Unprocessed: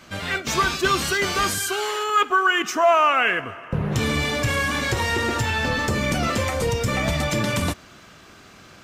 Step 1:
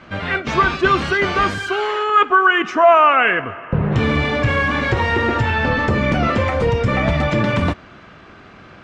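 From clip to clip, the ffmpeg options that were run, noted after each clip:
-af "lowpass=2.4k,volume=6dB"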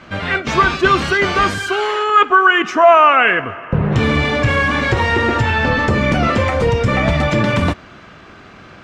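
-af "highshelf=f=7.2k:g=10.5,volume=2dB"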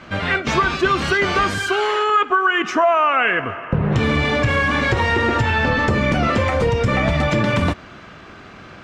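-af "acompressor=threshold=-14dB:ratio=4"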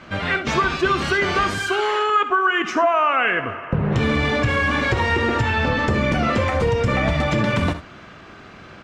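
-af "aecho=1:1:64|77:0.188|0.158,volume=-2dB"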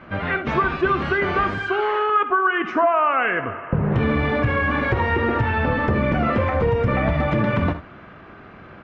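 -af "lowpass=2k"

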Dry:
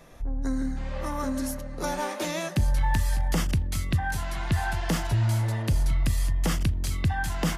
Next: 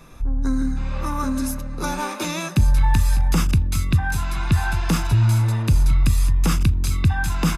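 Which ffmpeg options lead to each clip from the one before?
-af "aecho=1:1:0.8:0.52,volume=4dB"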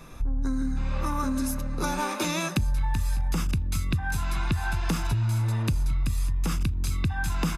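-af "acompressor=threshold=-23dB:ratio=6"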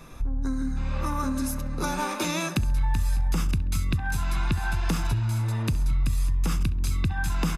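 -filter_complex "[0:a]asplit=2[a][b];[b]adelay=67,lowpass=f=3.3k:p=1,volume=-16dB,asplit=2[c][d];[d]adelay=67,lowpass=f=3.3k:p=1,volume=0.5,asplit=2[e][f];[f]adelay=67,lowpass=f=3.3k:p=1,volume=0.5,asplit=2[g][h];[h]adelay=67,lowpass=f=3.3k:p=1,volume=0.5[i];[a][c][e][g][i]amix=inputs=5:normalize=0"

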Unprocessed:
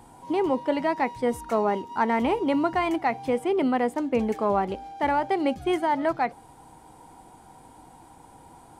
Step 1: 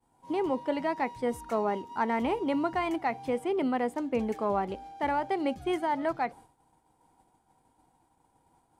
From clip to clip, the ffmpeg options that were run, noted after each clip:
-af "agate=range=-33dB:threshold=-40dB:ratio=3:detection=peak,volume=-5dB"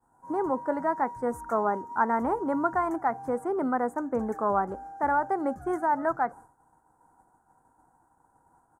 -af "firequalizer=gain_entry='entry(400,0);entry(960,5);entry(1500,9);entry(2600,-27);entry(3700,-24);entry(6600,-1)':delay=0.05:min_phase=1"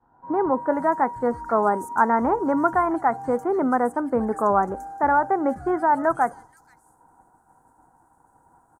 -filter_complex "[0:a]acrossover=split=3500[a][b];[b]adelay=480[c];[a][c]amix=inputs=2:normalize=0,volume=6dB"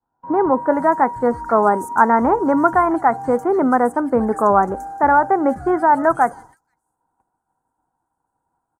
-af "agate=range=-21dB:threshold=-50dB:ratio=16:detection=peak,volume=5.5dB"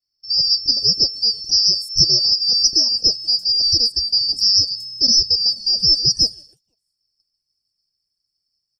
-af "afftfilt=real='real(if(lt(b,272),68*(eq(floor(b/68),0)*1+eq(floor(b/68),1)*2+eq(floor(b/68),2)*3+eq(floor(b/68),3)*0)+mod(b,68),b),0)':imag='imag(if(lt(b,272),68*(eq(floor(b/68),0)*1+eq(floor(b/68),1)*2+eq(floor(b/68),2)*3+eq(floor(b/68),3)*0)+mod(b,68),b),0)':win_size=2048:overlap=0.75,volume=-1dB"

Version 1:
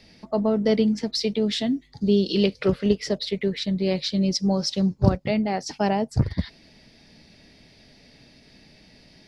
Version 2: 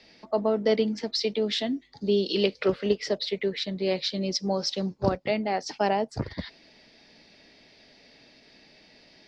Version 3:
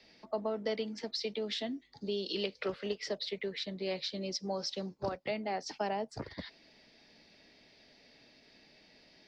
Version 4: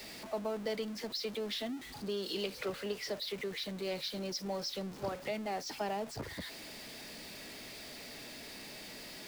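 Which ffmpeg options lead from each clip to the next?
-filter_complex "[0:a]acrossover=split=280 6700:gain=0.224 1 0.0891[a][b][c];[a][b][c]amix=inputs=3:normalize=0"
-filter_complex "[0:a]acrossover=split=250|570[a][b][c];[a]acompressor=threshold=-39dB:ratio=4[d];[b]acompressor=threshold=-34dB:ratio=4[e];[c]acompressor=threshold=-28dB:ratio=4[f];[d][e][f]amix=inputs=3:normalize=0,volume=-6dB"
-af "aeval=exprs='val(0)+0.5*0.0106*sgn(val(0))':c=same,volume=-3.5dB"

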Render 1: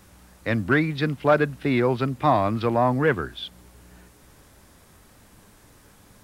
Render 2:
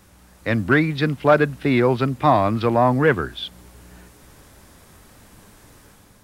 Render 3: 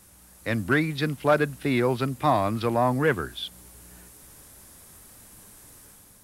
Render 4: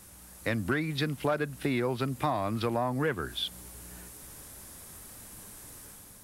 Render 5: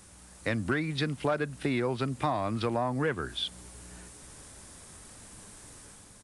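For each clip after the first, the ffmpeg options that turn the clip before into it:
-af "dynaudnorm=f=160:g=5:m=4.5dB"
-af "equalizer=f=11k:t=o:w=1.4:g=13.5,volume=-6dB"
-af "acompressor=threshold=-29dB:ratio=4,volume=2dB"
-af "aresample=22050,aresample=44100"

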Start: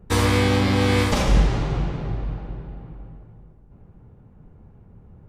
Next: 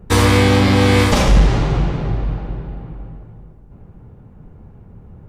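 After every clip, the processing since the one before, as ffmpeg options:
-af "acontrast=89"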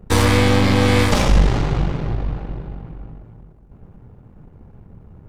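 -af "aeval=exprs='if(lt(val(0),0),0.447*val(0),val(0))':c=same"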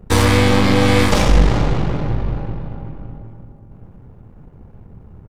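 -filter_complex "[0:a]asplit=2[a][b];[b]adelay=381,lowpass=f=1.3k:p=1,volume=-9.5dB,asplit=2[c][d];[d]adelay=381,lowpass=f=1.3k:p=1,volume=0.45,asplit=2[e][f];[f]adelay=381,lowpass=f=1.3k:p=1,volume=0.45,asplit=2[g][h];[h]adelay=381,lowpass=f=1.3k:p=1,volume=0.45,asplit=2[i][j];[j]adelay=381,lowpass=f=1.3k:p=1,volume=0.45[k];[a][c][e][g][i][k]amix=inputs=6:normalize=0,volume=1.5dB"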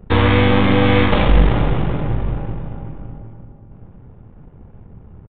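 -af "aresample=8000,aresample=44100"

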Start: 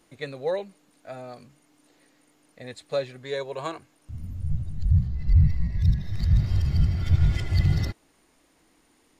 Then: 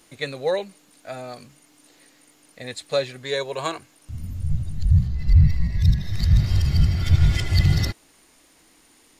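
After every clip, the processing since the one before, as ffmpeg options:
-af "highshelf=f=2.1k:g=8,volume=3.5dB"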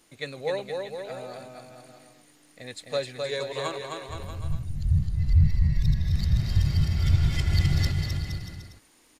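-af "aecho=1:1:260|468|634.4|767.5|874:0.631|0.398|0.251|0.158|0.1,volume=-6dB"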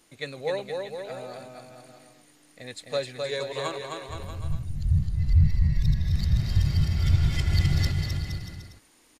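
-af "aresample=32000,aresample=44100"

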